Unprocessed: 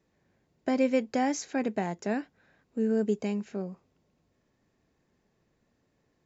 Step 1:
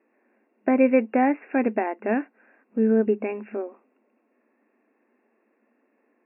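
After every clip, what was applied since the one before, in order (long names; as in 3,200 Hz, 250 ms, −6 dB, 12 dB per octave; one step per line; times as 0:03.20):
brick-wall band-pass 210–2,800 Hz
level +7 dB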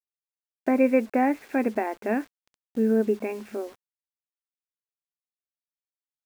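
bit reduction 8 bits
level −2 dB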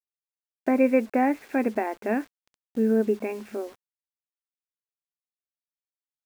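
no processing that can be heard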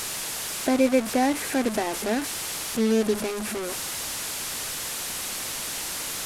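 linear delta modulator 64 kbit/s, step −24 dBFS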